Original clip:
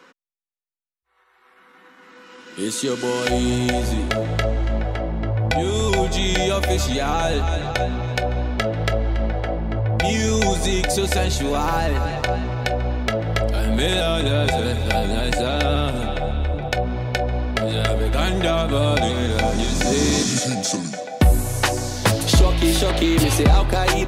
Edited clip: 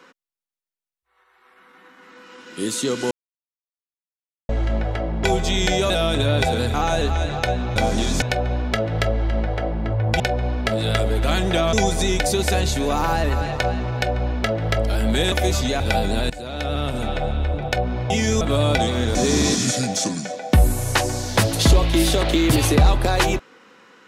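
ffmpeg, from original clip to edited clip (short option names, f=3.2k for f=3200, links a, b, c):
-filter_complex "[0:a]asplit=16[a][b][c][d][e][f][g][h][i][j][k][l][m][n][o][p];[a]atrim=end=3.11,asetpts=PTS-STARTPTS,afade=t=out:st=3.106:d=0.004:c=hsin[q];[b]atrim=start=3.11:end=4.49,asetpts=PTS-STARTPTS,volume=0[r];[c]atrim=start=4.49:end=5.242,asetpts=PTS-STARTPTS,afade=t=in:d=0.004:c=hsin[s];[d]atrim=start=5.918:end=6.582[t];[e]atrim=start=13.958:end=14.802[u];[f]atrim=start=7.058:end=8.082[v];[g]atrim=start=19.368:end=19.832[w];[h]atrim=start=8.078:end=10.062[x];[i]atrim=start=17.098:end=18.632[y];[j]atrim=start=10.368:end=13.962[z];[k]atrim=start=6.578:end=7.062[aa];[l]atrim=start=14.798:end=15.3,asetpts=PTS-STARTPTS,afade=t=out:st=0.498:d=0.004:c=hsin:silence=0.141254[ab];[m]atrim=start=15.3:end=17.102,asetpts=PTS-STARTPTS,afade=t=in:d=0.81:silence=0.141254[ac];[n]atrim=start=10.058:end=10.372[ad];[o]atrim=start=18.628:end=19.372[ae];[p]atrim=start=19.828[af];[q][r][s]concat=n=3:v=0:a=1[ag];[ag][t]acrossfade=d=0.004:c1=hsin:c2=hsin[ah];[ah][u]acrossfade=d=0.004:c1=hsin:c2=hsin[ai];[ai][v]acrossfade=d=0.004:c1=hsin:c2=hsin[aj];[aj][w]acrossfade=d=0.004:c1=hsin:c2=hsin[ak];[ak][x]acrossfade=d=0.004:c1=hsin:c2=hsin[al];[al][y]acrossfade=d=0.004:c1=hsin:c2=hsin[am];[am][z]acrossfade=d=0.004:c1=hsin:c2=hsin[an];[an][aa]acrossfade=d=0.004:c1=hsin:c2=hsin[ao];[ab][ac]concat=n=2:v=0:a=1[ap];[ao][ap]acrossfade=d=0.004:c1=hsin:c2=hsin[aq];[aq][ad]acrossfade=d=0.004:c1=hsin:c2=hsin[ar];[ar][ae]acrossfade=d=0.004:c1=hsin:c2=hsin[as];[as][af]acrossfade=d=0.004:c1=hsin:c2=hsin"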